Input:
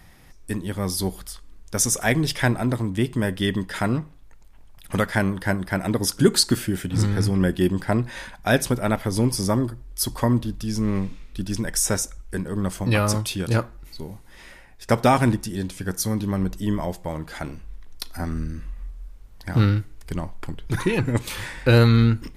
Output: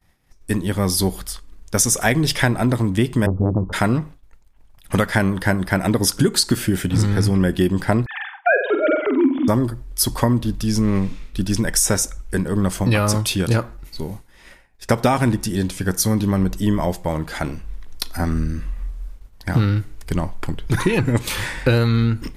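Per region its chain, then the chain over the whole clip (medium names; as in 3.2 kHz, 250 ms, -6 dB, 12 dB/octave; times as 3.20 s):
3.26–3.73 s: steep low-pass 1.3 kHz 96 dB/octave + peaking EQ 80 Hz +12 dB 2 oct + transformer saturation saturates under 330 Hz
8.06–9.48 s: formants replaced by sine waves + flutter echo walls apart 8 m, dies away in 0.46 s
whole clip: compression 6:1, threshold -20 dBFS; expander -37 dBFS; trim +7 dB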